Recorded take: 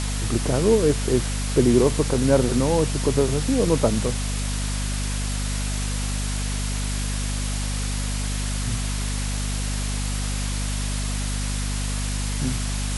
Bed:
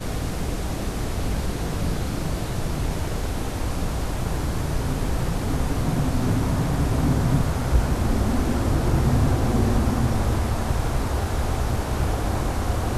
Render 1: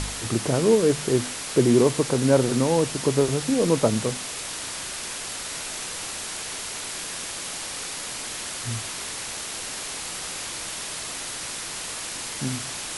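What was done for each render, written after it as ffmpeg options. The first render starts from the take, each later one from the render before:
-af "bandreject=f=50:t=h:w=4,bandreject=f=100:t=h:w=4,bandreject=f=150:t=h:w=4,bandreject=f=200:t=h:w=4,bandreject=f=250:t=h:w=4"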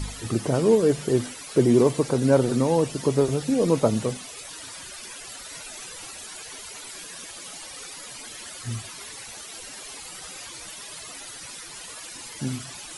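-af "afftdn=nr=14:nf=-34"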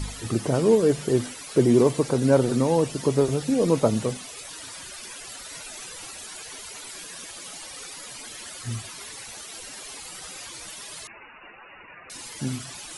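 -filter_complex "[0:a]asettb=1/sr,asplit=3[s0][s1][s2];[s0]atrim=end=11.074[s3];[s1]atrim=start=11.07:end=12.1,asetpts=PTS-STARTPTS,afade=t=in:d=0.004:c=qsin,afade=t=out:st=1.026:d=0.004:c=qsin,lowpass=f=2500:t=q:w=0.5098,lowpass=f=2500:t=q:w=0.6013,lowpass=f=2500:t=q:w=0.9,lowpass=f=2500:t=q:w=2.563,afreqshift=-2900[s4];[s2]atrim=start=12.096[s5];[s3][s4]acrossfade=d=0.004:c1=hsin:c2=qsin[s6];[s6][s5]acrossfade=d=0.004:c1=qsin:c2=hsin"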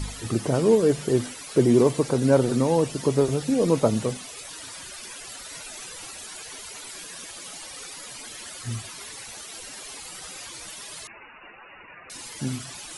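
-af anull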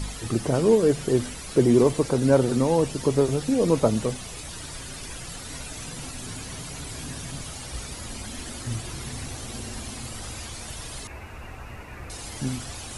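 -filter_complex "[1:a]volume=0.141[s0];[0:a][s0]amix=inputs=2:normalize=0"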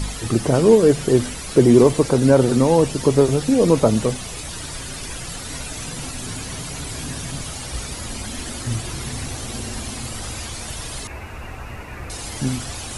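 -af "volume=2,alimiter=limit=0.794:level=0:latency=1"

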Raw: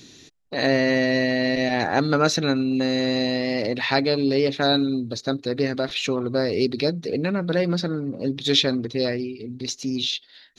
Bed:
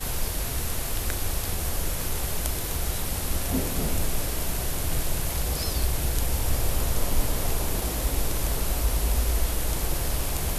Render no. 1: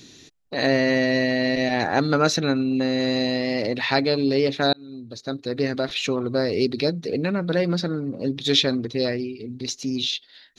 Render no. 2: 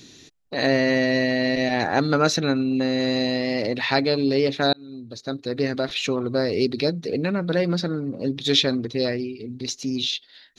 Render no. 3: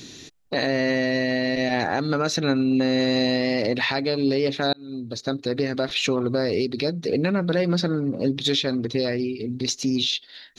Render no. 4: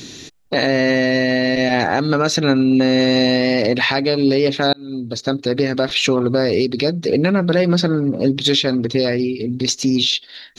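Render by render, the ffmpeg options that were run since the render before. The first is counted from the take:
-filter_complex "[0:a]asettb=1/sr,asplit=3[s0][s1][s2];[s0]atrim=end=2.404[s3];[s1]atrim=start=2.4:end=3,asetpts=PTS-STARTPTS,afade=t=in:d=0.004:c=qsin,afade=t=out:st=0.596:d=0.004:c=qsin,highshelf=f=6500:g=-10[s4];[s2]atrim=start=2.996[s5];[s3][s4]acrossfade=d=0.004:c1=hsin:c2=qsin[s6];[s6][s5]acrossfade=d=0.004:c1=qsin:c2=hsin,asplit=2[s7][s8];[s7]atrim=end=4.73,asetpts=PTS-STARTPTS,afade=t=out:st=4.726:d=0.004:c=hsin[s9];[s8]atrim=start=4.73,asetpts=PTS-STARTPTS,afade=t=in:d=0.96[s10];[s9][s10]concat=n=2:v=0:a=1"
-af anull
-filter_complex "[0:a]asplit=2[s0][s1];[s1]acompressor=threshold=0.0355:ratio=6,volume=0.891[s2];[s0][s2]amix=inputs=2:normalize=0,alimiter=limit=0.251:level=0:latency=1:release=247"
-af "volume=2.11"

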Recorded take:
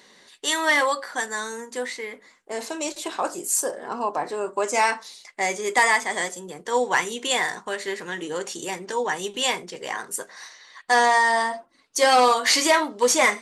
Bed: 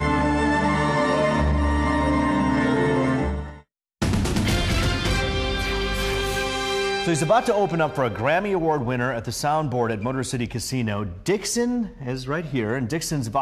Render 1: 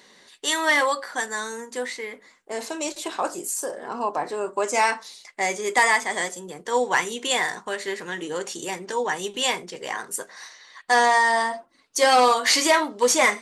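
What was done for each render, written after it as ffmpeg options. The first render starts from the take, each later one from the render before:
-filter_complex "[0:a]asettb=1/sr,asplit=3[s0][s1][s2];[s0]atrim=end=3.414[s3];[s1]atrim=start=3.41:end=3.95,asetpts=PTS-STARTPTS,afade=t=in:d=0.004:c=qsin,afade=t=out:st=0.536:d=0.004:c=qsin,acompressor=threshold=0.0631:ratio=6:attack=3.2:release=140:knee=1:detection=peak[s4];[s2]atrim=start=3.946[s5];[s3][s4]acrossfade=d=0.004:c1=hsin:c2=qsin[s6];[s6][s5]acrossfade=d=0.004:c1=qsin:c2=hsin"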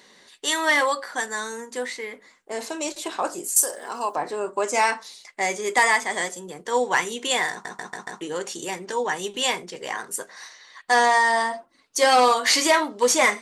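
-filter_complex "[0:a]asettb=1/sr,asplit=3[s0][s1][s2];[s0]atrim=end=3.564[s3];[s1]atrim=start=3.56:end=4.15,asetpts=PTS-STARTPTS,afade=t=in:d=0.004:c=qsin,afade=t=out:st=0.586:d=0.004:c=qsin,aemphasis=mode=production:type=riaa[s4];[s2]atrim=start=4.146[s5];[s3][s4]acrossfade=d=0.004:c1=hsin:c2=qsin[s6];[s6][s5]acrossfade=d=0.004:c1=qsin:c2=hsin,asplit=6[s7][s8][s9][s10][s11][s12];[s7]atrim=end=7.652[s13];[s8]atrim=start=7.508:end=7.652[s14];[s9]atrim=start=7.508:end=7.652[s15];[s10]atrim=start=7.508:end=7.652[s16];[s11]atrim=start=7.508:end=7.652[s17];[s12]atrim=start=8.208[s18];[s13][s14]acrossfade=d=0.004:c1=hsin:c2=hsin[s19];[s19][s15]acrossfade=d=0.004:c1=hsin:c2=hsin[s20];[s20][s16]acrossfade=d=0.004:c1=hsin:c2=hsin[s21];[s21][s17]acrossfade=d=0.004:c1=hsin:c2=hsin[s22];[s22][s18]acrossfade=d=0.004:c1=hsin:c2=hsin"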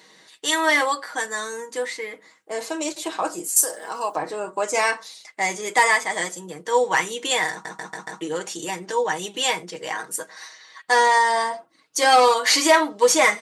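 -af "highpass=75,aecho=1:1:6.3:0.57"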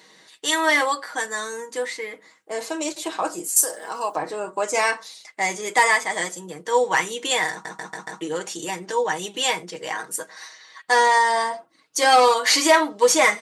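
-af anull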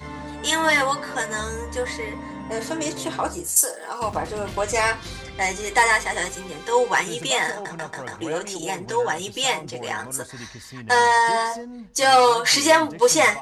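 -filter_complex "[1:a]volume=0.2[s0];[0:a][s0]amix=inputs=2:normalize=0"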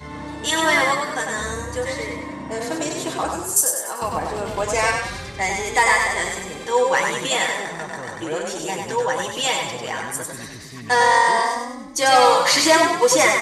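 -filter_complex "[0:a]asplit=7[s0][s1][s2][s3][s4][s5][s6];[s1]adelay=97,afreqshift=30,volume=0.631[s7];[s2]adelay=194,afreqshift=60,volume=0.295[s8];[s3]adelay=291,afreqshift=90,volume=0.14[s9];[s4]adelay=388,afreqshift=120,volume=0.0653[s10];[s5]adelay=485,afreqshift=150,volume=0.0309[s11];[s6]adelay=582,afreqshift=180,volume=0.0145[s12];[s0][s7][s8][s9][s10][s11][s12]amix=inputs=7:normalize=0"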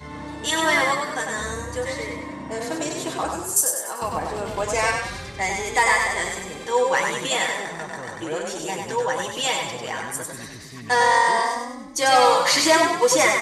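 -af "volume=0.794"

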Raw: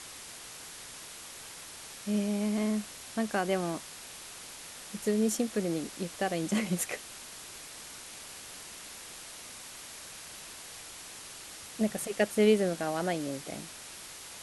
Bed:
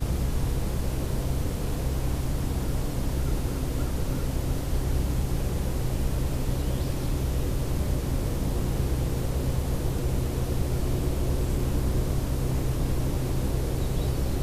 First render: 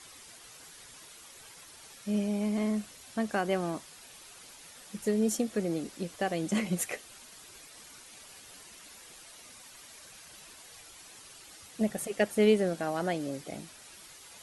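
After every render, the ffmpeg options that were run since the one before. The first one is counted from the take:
-af "afftdn=nr=9:nf=-47"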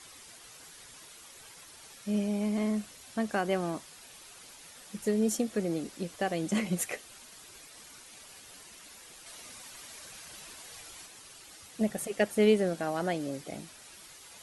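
-filter_complex "[0:a]asplit=3[s0][s1][s2];[s0]atrim=end=9.262[s3];[s1]atrim=start=9.258:end=11.062,asetpts=PTS-STARTPTS,volume=1.5[s4];[s2]atrim=start=11.058[s5];[s3][s4]acrossfade=d=0.004:c1=hsin:c2=hsin[s6];[s6][s5]acrossfade=d=0.004:c1=hsin:c2=hsin"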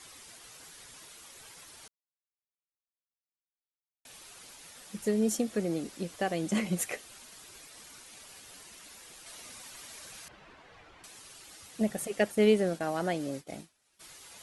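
-filter_complex "[0:a]asettb=1/sr,asplit=3[s0][s1][s2];[s0]atrim=end=10.284[s3];[s1]atrim=start=10.28:end=11.04,asetpts=PTS-STARTPTS,afade=t=in:d=0.004:c=qsin,afade=t=out:st=0.756:d=0.004:c=qsin,lowpass=1900[s4];[s2]atrim=start=11.036[s5];[s3][s4]acrossfade=d=0.004:c1=hsin:c2=qsin[s6];[s6][s5]acrossfade=d=0.004:c1=qsin:c2=hsin,asplit=3[s7][s8][s9];[s7]afade=t=out:st=12.31:d=0.02[s10];[s8]agate=range=0.0224:threshold=0.0112:ratio=3:release=100:detection=peak,afade=t=in:st=12.31:d=0.02,afade=t=out:st=13.99:d=0.02[s11];[s9]afade=t=in:st=13.99:d=0.02[s12];[s10][s11][s12]amix=inputs=3:normalize=0,asplit=3[s13][s14][s15];[s13]atrim=end=1.88,asetpts=PTS-STARTPTS,afade=t=out:st=1.876:d=0.004:c=hsin[s16];[s14]atrim=start=1.88:end=4.05,asetpts=PTS-STARTPTS,volume=0[s17];[s15]atrim=start=4.05,asetpts=PTS-STARTPTS,afade=t=in:d=0.004:c=hsin[s18];[s16][s17][s18]concat=n=3:v=0:a=1"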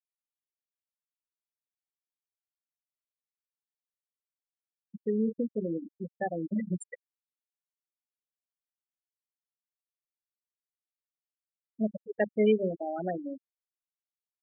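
-af "bandreject=f=50:t=h:w=6,bandreject=f=100:t=h:w=6,bandreject=f=150:t=h:w=6,bandreject=f=200:t=h:w=6,bandreject=f=250:t=h:w=6,bandreject=f=300:t=h:w=6,bandreject=f=350:t=h:w=6,bandreject=f=400:t=h:w=6,bandreject=f=450:t=h:w=6,afftfilt=real='re*gte(hypot(re,im),0.1)':imag='im*gte(hypot(re,im),0.1)':win_size=1024:overlap=0.75"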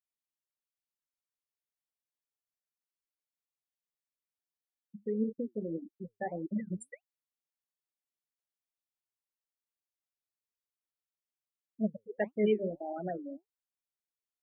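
-af "flanger=delay=2.5:depth=7.8:regen=71:speed=1.7:shape=triangular"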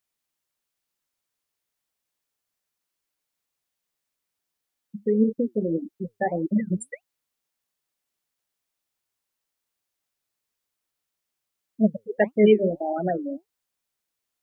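-af "volume=3.76"

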